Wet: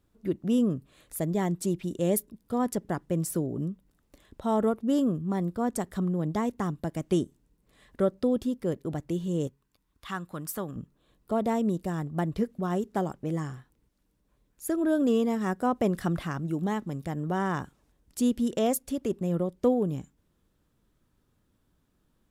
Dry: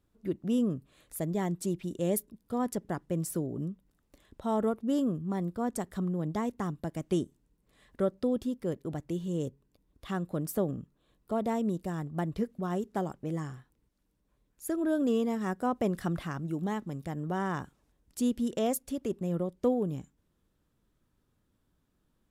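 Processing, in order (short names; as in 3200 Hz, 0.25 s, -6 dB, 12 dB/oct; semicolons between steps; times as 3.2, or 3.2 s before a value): 9.47–10.76 resonant low shelf 800 Hz -8 dB, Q 1.5; gain +3.5 dB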